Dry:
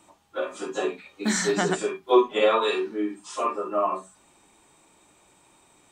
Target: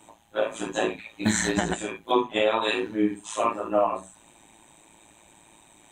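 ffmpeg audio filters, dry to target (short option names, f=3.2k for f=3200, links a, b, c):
-af "superequalizer=7b=0.316:10b=0.501:14b=0.316,tremolo=f=110:d=0.788,alimiter=limit=-19dB:level=0:latency=1:release=279,volume=8dB"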